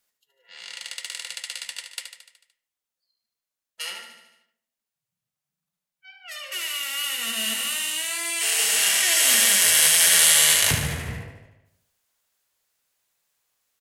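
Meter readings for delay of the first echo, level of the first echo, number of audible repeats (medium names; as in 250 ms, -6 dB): 74 ms, -8.0 dB, 6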